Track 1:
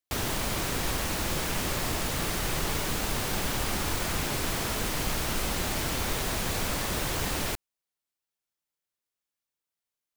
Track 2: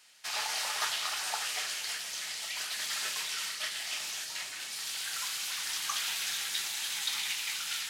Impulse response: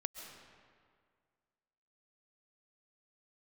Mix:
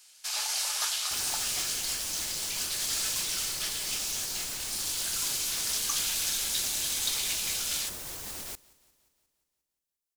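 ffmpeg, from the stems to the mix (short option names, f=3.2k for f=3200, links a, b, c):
-filter_complex "[0:a]alimiter=limit=-24dB:level=0:latency=1:release=107,adelay=1000,volume=-10.5dB,asplit=2[a][b];[b]volume=-23dB[c];[1:a]bandreject=f=1.9k:w=15,volume=-3.5dB[d];[c]aecho=0:1:177|354|531|708|885|1062|1239|1416|1593:1|0.59|0.348|0.205|0.121|0.0715|0.0422|0.0249|0.0147[e];[a][d][e]amix=inputs=3:normalize=0,bass=f=250:g=-3,treble=f=4k:g=11"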